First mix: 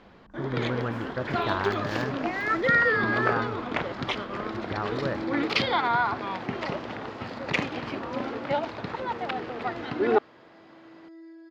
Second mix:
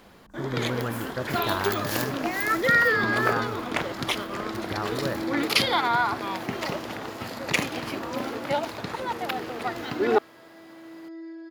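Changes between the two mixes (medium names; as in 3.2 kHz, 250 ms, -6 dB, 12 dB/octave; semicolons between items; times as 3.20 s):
first sound: remove distance through air 190 m; second sound +7.0 dB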